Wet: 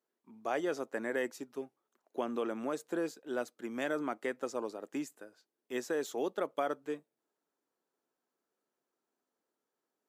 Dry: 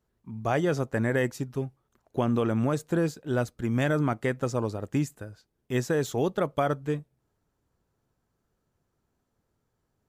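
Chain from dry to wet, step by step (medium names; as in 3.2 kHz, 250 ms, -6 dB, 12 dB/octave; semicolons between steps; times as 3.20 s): high-pass 270 Hz 24 dB/octave; trim -7 dB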